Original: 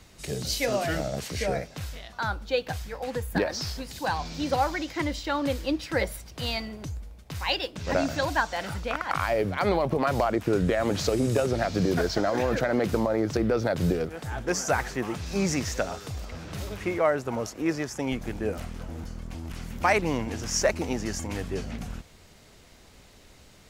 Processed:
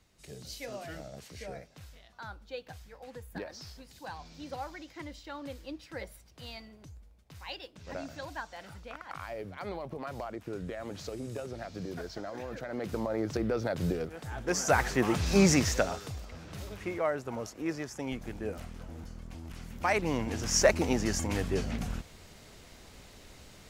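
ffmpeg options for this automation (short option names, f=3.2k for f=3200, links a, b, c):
-af "volume=13dB,afade=t=in:st=12.63:d=0.58:silence=0.375837,afade=t=in:st=14.37:d=0.92:silence=0.281838,afade=t=out:st=15.29:d=0.94:silence=0.251189,afade=t=in:st=19.82:d=0.87:silence=0.398107"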